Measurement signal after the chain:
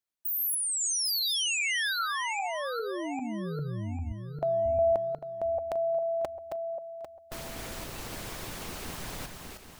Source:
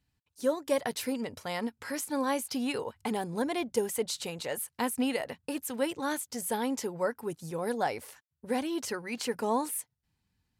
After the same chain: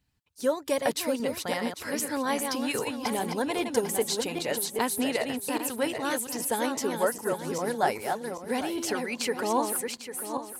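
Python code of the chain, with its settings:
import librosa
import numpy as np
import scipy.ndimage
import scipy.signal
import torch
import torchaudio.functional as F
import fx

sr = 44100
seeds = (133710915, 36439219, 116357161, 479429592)

y = fx.reverse_delay_fb(x, sr, ms=399, feedback_pct=51, wet_db=-5)
y = fx.hpss(y, sr, part='harmonic', gain_db=-5)
y = y * librosa.db_to_amplitude(5.0)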